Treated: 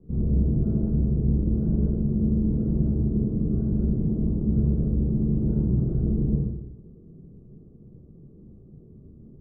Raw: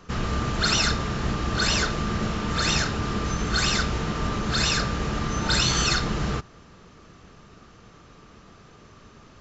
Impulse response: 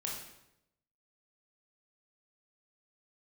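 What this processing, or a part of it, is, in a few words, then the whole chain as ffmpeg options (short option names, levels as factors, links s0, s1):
next room: -filter_complex "[0:a]lowpass=f=380:w=0.5412,lowpass=f=380:w=1.3066[s0];[1:a]atrim=start_sample=2205[s1];[s0][s1]afir=irnorm=-1:irlink=0,volume=1.33"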